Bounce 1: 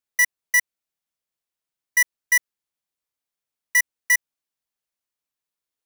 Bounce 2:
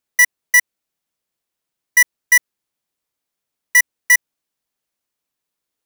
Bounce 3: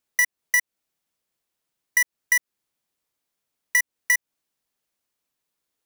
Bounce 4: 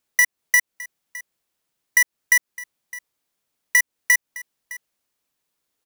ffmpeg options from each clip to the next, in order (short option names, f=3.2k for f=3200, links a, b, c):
-af "equalizer=f=260:t=o:w=2.5:g=4,volume=6dB"
-af "acompressor=threshold=-19dB:ratio=6"
-af "aecho=1:1:611:0.112,volume=3.5dB"